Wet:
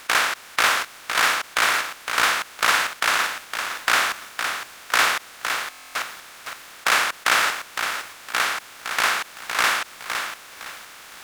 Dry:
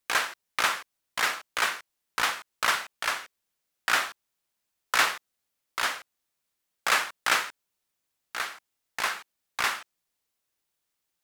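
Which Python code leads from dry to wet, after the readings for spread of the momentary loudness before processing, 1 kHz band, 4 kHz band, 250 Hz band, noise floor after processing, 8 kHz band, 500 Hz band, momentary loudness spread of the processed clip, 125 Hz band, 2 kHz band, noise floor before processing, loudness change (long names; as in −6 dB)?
13 LU, +7.5 dB, +7.5 dB, +7.5 dB, −44 dBFS, +7.5 dB, +7.5 dB, 13 LU, can't be measured, +7.5 dB, −82 dBFS, +6.0 dB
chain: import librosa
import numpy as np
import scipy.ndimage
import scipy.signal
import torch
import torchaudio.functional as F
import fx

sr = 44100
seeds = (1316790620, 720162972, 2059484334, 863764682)

y = fx.bin_compress(x, sr, power=0.4)
y = fx.buffer_glitch(y, sr, at_s=(5.58,), block=1024, repeats=15)
y = fx.echo_crushed(y, sr, ms=511, feedback_pct=35, bits=7, wet_db=-6.5)
y = y * 10.0 ** (1.0 / 20.0)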